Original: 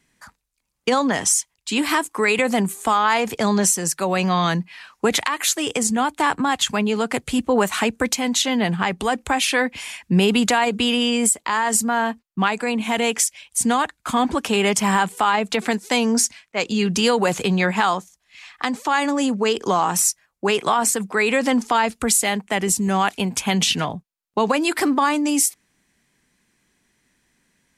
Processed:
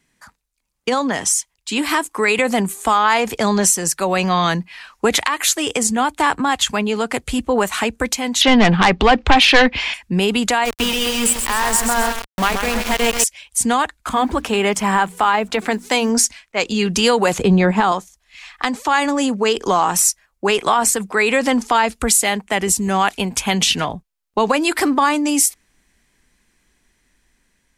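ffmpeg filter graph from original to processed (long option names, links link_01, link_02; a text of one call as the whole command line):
ffmpeg -i in.wav -filter_complex "[0:a]asettb=1/sr,asplit=3[link_01][link_02][link_03];[link_01]atrim=end=8.414[link_04];[link_02]atrim=start=8.41:end=9.94,asetpts=PTS-STARTPTS,afade=type=in:duration=0.004:curve=qsin,afade=type=out:start_time=1.526:duration=0.004:curve=qsin,lowpass=frequency=4600:width=0.5412,lowpass=frequency=4600:width=1.3066,aeval=exprs='0.473*sin(PI/2*2.24*val(0)/0.473)':channel_layout=same[link_05];[link_03]atrim=start=9.936[link_06];[link_04][link_05]acrossfade=duration=0.004:curve1=hsin:curve2=qsin[link_07];[link_07][link_06]acrossfade=duration=0.004:curve1=qsin:curve2=hsin,asettb=1/sr,asplit=3[link_08][link_09][link_10];[link_08]atrim=end=10.654[link_11];[link_09]atrim=start=10.65:end=13.24,asetpts=PTS-STARTPTS,afade=type=in:duration=0.004:curve=qsin,afade=type=out:start_time=2.586:duration=0.004:curve=qsin,highpass=41,aecho=1:1:131|262|393|524|655:0.501|0.221|0.097|0.0427|0.0188,atrim=end_sample=114219,aeval=exprs='val(0)*gte(abs(val(0)),0.0944)':channel_layout=same[link_12];[link_10]atrim=start=13.236[link_13];[link_11][link_12]acrossfade=duration=0.004:curve1=hsin:curve2=qsin[link_14];[link_14][link_13]acrossfade=duration=0.004:curve1=qsin:curve2=hsin,asettb=1/sr,asplit=3[link_15][link_16][link_17];[link_15]atrim=end=14.094[link_18];[link_16]atrim=start=14.09:end=16.1,asetpts=PTS-STARTPTS,afade=type=in:duration=0.004:curve=qsin,afade=type=out:start_time=2.006:duration=0.004:curve=qsin,bandreject=frequency=60:width_type=h:width=6,bandreject=frequency=120:width_type=h:width=6,bandreject=frequency=180:width_type=h:width=6,bandreject=frequency=240:width_type=h:width=6,bandreject=frequency=300:width_type=h:width=6,acrusher=bits=7:mix=0:aa=0.5,adynamicequalizer=threshold=0.02:dfrequency=2600:dqfactor=0.7:tfrequency=2600:tqfactor=0.7:attack=5:release=100:ratio=0.375:range=3.5:mode=cutabove:tftype=highshelf[link_19];[link_17]atrim=start=16.096[link_20];[link_18][link_19]acrossfade=duration=0.004:curve1=hsin:curve2=qsin[link_21];[link_21][link_20]acrossfade=duration=0.004:curve1=qsin:curve2=hsin,asettb=1/sr,asplit=3[link_22][link_23][link_24];[link_22]atrim=end=17.384[link_25];[link_23]atrim=start=17.38:end=17.92,asetpts=PTS-STARTPTS,afade=type=in:duration=0.004:curve=qsin,afade=type=out:start_time=0.536:duration=0.004:curve=qsin,lowpass=11000,tiltshelf=frequency=820:gain=7[link_26];[link_24]atrim=start=17.916[link_27];[link_25][link_26]acrossfade=duration=0.004:curve1=hsin:curve2=qsin[link_28];[link_28][link_27]acrossfade=duration=0.004:curve1=qsin:curve2=hsin,asubboost=boost=6:cutoff=53,dynaudnorm=framelen=810:gausssize=5:maxgain=5dB" out.wav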